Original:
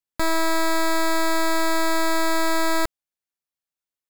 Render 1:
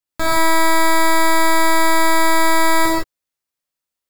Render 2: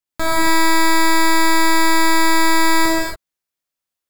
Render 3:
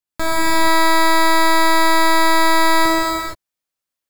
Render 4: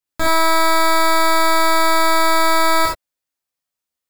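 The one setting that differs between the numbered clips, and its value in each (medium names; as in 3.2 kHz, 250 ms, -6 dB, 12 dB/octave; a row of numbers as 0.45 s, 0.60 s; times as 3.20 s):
gated-style reverb, gate: 190 ms, 310 ms, 500 ms, 100 ms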